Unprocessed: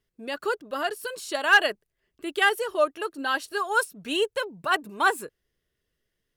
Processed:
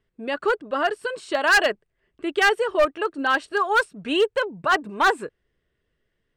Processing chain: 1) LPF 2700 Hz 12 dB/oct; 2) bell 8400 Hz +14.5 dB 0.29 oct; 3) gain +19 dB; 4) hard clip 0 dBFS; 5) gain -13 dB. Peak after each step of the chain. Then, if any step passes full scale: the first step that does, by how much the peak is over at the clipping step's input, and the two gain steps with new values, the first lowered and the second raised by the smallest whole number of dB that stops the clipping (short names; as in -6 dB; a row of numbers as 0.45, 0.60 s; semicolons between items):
-9.0, -9.0, +10.0, 0.0, -13.0 dBFS; step 3, 10.0 dB; step 3 +9 dB, step 5 -3 dB